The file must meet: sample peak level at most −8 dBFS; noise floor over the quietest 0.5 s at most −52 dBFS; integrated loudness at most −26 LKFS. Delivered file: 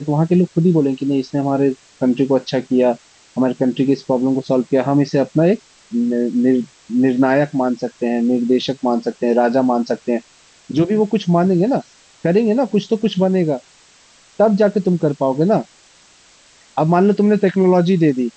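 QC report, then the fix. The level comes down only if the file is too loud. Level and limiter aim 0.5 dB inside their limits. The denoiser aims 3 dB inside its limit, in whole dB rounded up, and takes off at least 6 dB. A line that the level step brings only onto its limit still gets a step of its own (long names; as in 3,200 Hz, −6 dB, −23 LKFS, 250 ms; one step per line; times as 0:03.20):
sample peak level −4.0 dBFS: out of spec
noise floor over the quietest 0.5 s −50 dBFS: out of spec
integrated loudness −17.0 LKFS: out of spec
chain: level −9.5 dB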